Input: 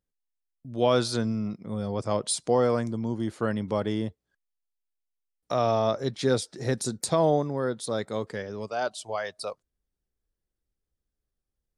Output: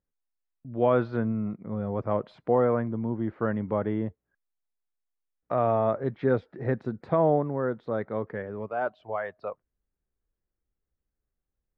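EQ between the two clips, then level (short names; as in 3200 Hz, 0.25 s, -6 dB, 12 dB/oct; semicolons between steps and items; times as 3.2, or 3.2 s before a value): LPF 2000 Hz 24 dB/oct; 0.0 dB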